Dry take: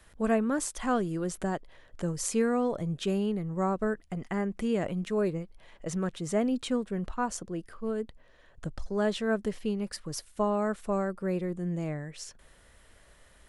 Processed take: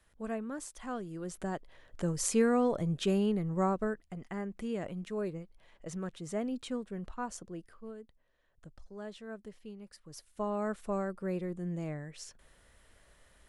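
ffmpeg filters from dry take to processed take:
-af "volume=3.76,afade=t=in:st=1.05:d=1.18:silence=0.281838,afade=t=out:st=3.57:d=0.47:silence=0.421697,afade=t=out:st=7.55:d=0.46:silence=0.375837,afade=t=in:st=10.02:d=0.66:silence=0.266073"

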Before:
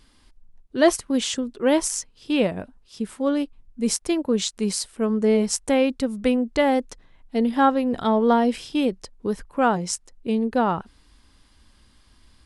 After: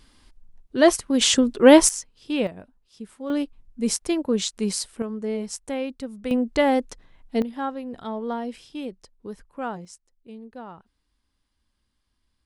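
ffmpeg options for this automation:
-af "asetnsamples=n=441:p=0,asendcmd='1.21 volume volume 8dB;1.89 volume volume -3.5dB;2.47 volume volume -10dB;3.3 volume volume -1dB;5.02 volume volume -9dB;6.31 volume volume 0dB;7.42 volume volume -11dB;9.85 volume volume -18.5dB',volume=1.12"

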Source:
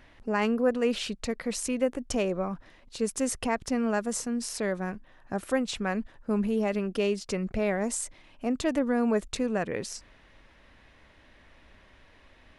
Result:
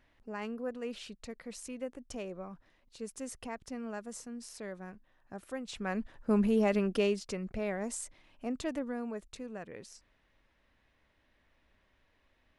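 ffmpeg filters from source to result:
-af "afade=t=in:st=5.62:d=0.69:silence=0.223872,afade=t=out:st=6.87:d=0.49:silence=0.421697,afade=t=out:st=8.59:d=0.54:silence=0.446684"

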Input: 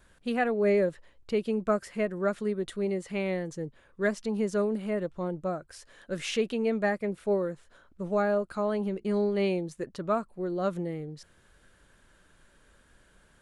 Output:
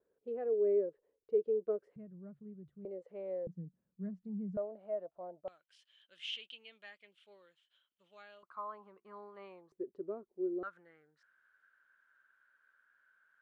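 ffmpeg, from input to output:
-af "asetnsamples=n=441:p=0,asendcmd='1.96 bandpass f 140;2.85 bandpass f 510;3.47 bandpass f 180;4.57 bandpass f 660;5.48 bandpass f 3100;8.43 bandpass f 1100;9.72 bandpass f 380;10.63 bandpass f 1500',bandpass=f=440:t=q:w=8.4:csg=0"

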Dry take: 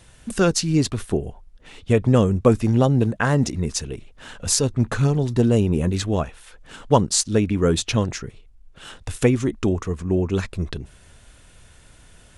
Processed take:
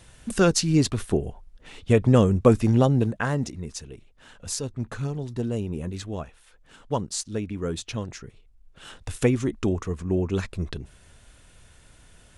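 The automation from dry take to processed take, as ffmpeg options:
-af "volume=2,afade=t=out:st=2.71:d=0.87:silence=0.334965,afade=t=in:st=8.05:d=0.92:silence=0.446684"

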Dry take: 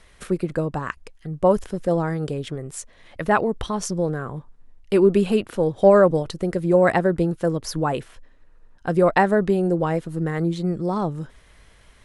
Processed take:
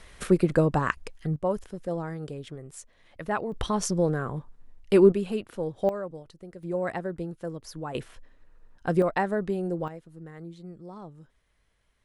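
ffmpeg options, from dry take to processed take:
-af "asetnsamples=n=441:p=0,asendcmd='1.36 volume volume -10dB;3.52 volume volume -1dB;5.12 volume volume -10dB;5.89 volume volume -20dB;6.63 volume volume -13dB;7.95 volume volume -3dB;9.02 volume volume -9dB;9.88 volume volume -19dB',volume=1.33"

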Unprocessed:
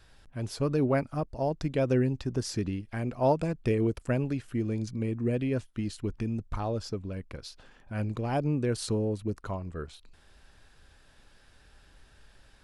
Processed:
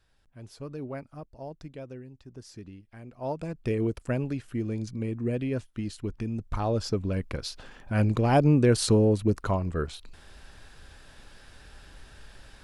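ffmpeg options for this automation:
-af "volume=6.68,afade=t=out:st=1.6:d=0.43:silence=0.375837,afade=t=in:st=2.03:d=0.5:silence=0.473151,afade=t=in:st=3.13:d=0.67:silence=0.237137,afade=t=in:st=6.32:d=0.84:silence=0.375837"

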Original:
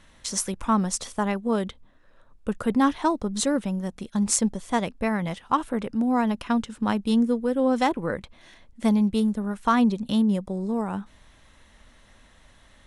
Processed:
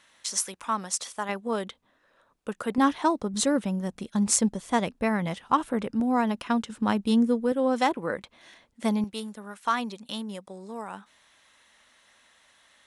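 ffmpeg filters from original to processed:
-af "asetnsamples=n=441:p=0,asendcmd='1.29 highpass f 490;2.78 highpass f 200;3.34 highpass f 93;6 highpass f 210;6.7 highpass f 93;7.52 highpass f 330;9.04 highpass f 1200',highpass=f=1100:p=1"

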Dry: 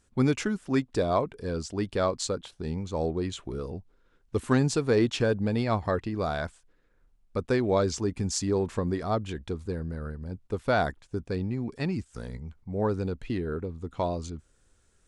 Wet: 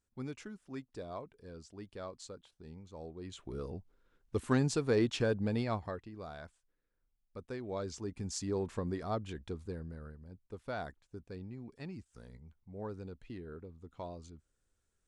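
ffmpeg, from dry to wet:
-af "volume=1.33,afade=t=in:st=3.17:d=0.44:silence=0.251189,afade=t=out:st=5.57:d=0.43:silence=0.298538,afade=t=in:st=7.6:d=1.03:silence=0.375837,afade=t=out:st=9.59:d=0.66:silence=0.446684"

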